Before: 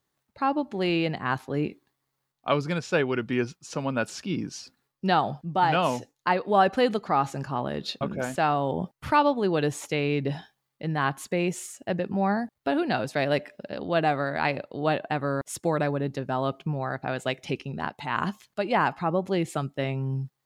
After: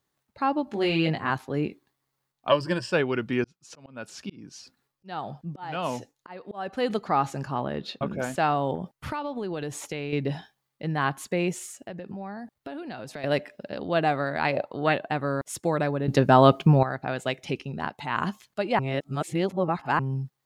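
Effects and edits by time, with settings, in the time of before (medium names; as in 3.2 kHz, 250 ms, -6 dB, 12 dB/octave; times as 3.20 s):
0.65–1.30 s: doubling 19 ms -3 dB
2.49–2.93 s: rippled EQ curve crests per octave 1.3, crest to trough 14 dB
3.44–6.90 s: slow attack 512 ms
7.65–8.07 s: tone controls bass 0 dB, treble -9 dB
8.75–10.13 s: compression, threshold -28 dBFS
11.55–13.24 s: compression, threshold -34 dBFS
14.52–14.93 s: peaking EQ 530 Hz -> 2.2 kHz +13 dB 0.66 oct
16.08–16.83 s: gain +11.5 dB
18.79–19.99 s: reverse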